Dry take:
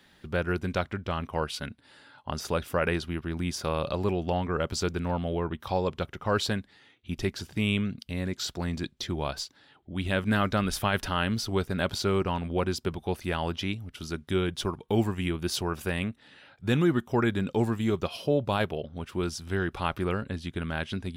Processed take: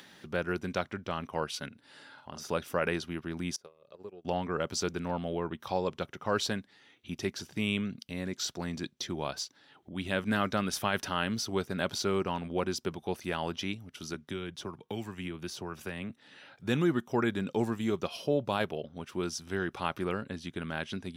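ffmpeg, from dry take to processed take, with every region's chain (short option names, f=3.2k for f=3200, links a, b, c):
-filter_complex "[0:a]asettb=1/sr,asplit=3[a][b][c];[a]atrim=end=1.684[d];[b]atrim=start=1.68:end=2.5,asetpts=PTS-STARTPTS,afade=t=in:d=0.004:c=qsin,afade=t=out:st=0.816:d=0.004:c=qsin,acompressor=threshold=-49dB:ratio=1.5:attack=3.2:release=140:knee=1:detection=peak,asplit=2[e][f];[f]adelay=48,volume=-6dB[g];[e][g]amix=inputs=2:normalize=0,atrim=end_sample=36162[h];[c]atrim=start=2.496[i];[d][h]acrossfade=d=0.004:c1=hsin:c2=qsin[j];[j][i]acrossfade=d=0.004:c1=qsin:c2=hsin,asettb=1/sr,asplit=3[k][l][m];[k]atrim=end=3.564[n];[l]atrim=start=3.56:end=4.25,asetpts=PTS-STARTPTS,afade=t=in:d=0.004:c=qsin,afade=t=out:st=0.686:d=0.004:c=qsin,equalizer=f=440:t=o:w=0.46:g=8.5,acompressor=threshold=-31dB:ratio=16:attack=3.2:release=140:knee=1:detection=peak,agate=range=-27dB:threshold=-34dB:ratio=16:release=100:detection=peak[o];[m]atrim=start=4.246[p];[n][o]acrossfade=d=0.004:c1=hsin:c2=qsin[q];[q][p]acrossfade=d=0.004:c1=qsin:c2=hsin,asettb=1/sr,asplit=3[r][s][t];[r]atrim=end=14.144[u];[s]atrim=start=14.14:end=16.1,asetpts=PTS-STARTPTS,afade=t=in:d=0.004:c=qsin,afade=t=out:st=1.956:d=0.004:c=qsin,acrossover=split=160|1500[v][w][x];[v]acompressor=threshold=-35dB:ratio=4[y];[w]acompressor=threshold=-35dB:ratio=4[z];[x]acompressor=threshold=-37dB:ratio=4[aa];[y][z][aa]amix=inputs=3:normalize=0,equalizer=f=12k:t=o:w=2.3:g=-5[ab];[t]atrim=start=16.096[ac];[u][ab]acrossfade=d=0.004:c1=hsin:c2=qsin[ad];[ad][ac]acrossfade=d=0.004:c1=qsin:c2=hsin,highpass=140,equalizer=f=5.9k:w=5.2:g=6,acompressor=mode=upward:threshold=-43dB:ratio=2.5,volume=-3dB"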